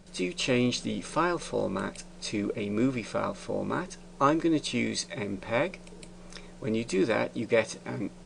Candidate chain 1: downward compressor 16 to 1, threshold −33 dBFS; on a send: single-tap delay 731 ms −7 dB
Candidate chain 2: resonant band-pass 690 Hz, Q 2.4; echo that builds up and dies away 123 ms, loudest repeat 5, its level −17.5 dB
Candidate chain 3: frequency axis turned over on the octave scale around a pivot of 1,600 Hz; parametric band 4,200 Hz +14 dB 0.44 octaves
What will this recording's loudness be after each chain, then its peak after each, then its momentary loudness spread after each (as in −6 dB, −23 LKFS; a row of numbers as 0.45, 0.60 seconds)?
−38.0, −37.5, −28.0 LKFS; −18.5, −16.5, −9.5 dBFS; 5, 12, 14 LU